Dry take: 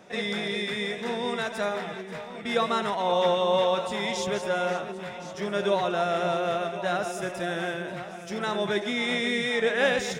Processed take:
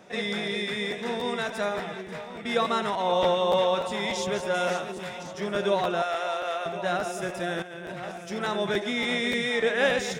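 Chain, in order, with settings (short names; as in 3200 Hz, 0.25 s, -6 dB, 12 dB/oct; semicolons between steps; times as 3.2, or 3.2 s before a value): 4.54–5.23 high shelf 3700 Hz +8.5 dB; 6.02–6.66 HPF 650 Hz 12 dB/oct; 7.62–8.12 negative-ratio compressor -38 dBFS, ratio -1; crackling interface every 0.29 s, samples 512, repeat, from 0.9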